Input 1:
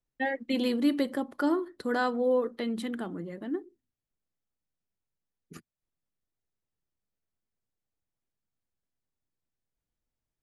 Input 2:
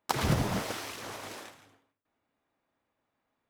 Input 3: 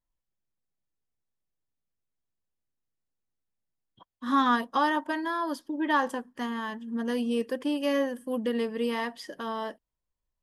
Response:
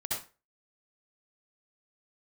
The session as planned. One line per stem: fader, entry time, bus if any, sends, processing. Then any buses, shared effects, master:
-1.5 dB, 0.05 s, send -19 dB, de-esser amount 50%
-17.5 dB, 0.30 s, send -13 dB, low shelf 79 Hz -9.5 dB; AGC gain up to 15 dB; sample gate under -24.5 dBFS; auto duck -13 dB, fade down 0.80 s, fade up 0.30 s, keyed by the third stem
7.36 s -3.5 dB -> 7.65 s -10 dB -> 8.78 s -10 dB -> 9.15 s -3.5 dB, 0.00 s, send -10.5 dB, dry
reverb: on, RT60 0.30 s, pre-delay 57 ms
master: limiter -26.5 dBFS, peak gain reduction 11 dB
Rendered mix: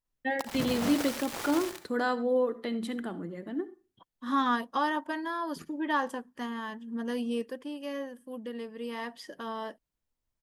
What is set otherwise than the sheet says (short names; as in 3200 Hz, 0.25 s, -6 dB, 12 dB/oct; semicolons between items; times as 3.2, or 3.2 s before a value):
stem 2 -17.5 dB -> -9.5 dB; stem 3: send off; master: missing limiter -26.5 dBFS, peak gain reduction 11 dB